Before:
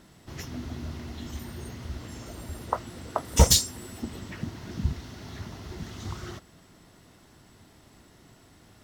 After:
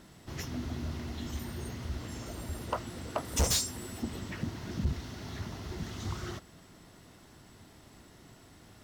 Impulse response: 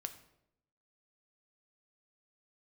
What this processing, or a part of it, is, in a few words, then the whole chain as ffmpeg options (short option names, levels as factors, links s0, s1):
saturation between pre-emphasis and de-emphasis: -af "highshelf=f=7300:g=7,asoftclip=type=tanh:threshold=0.0794,highshelf=f=7300:g=-7"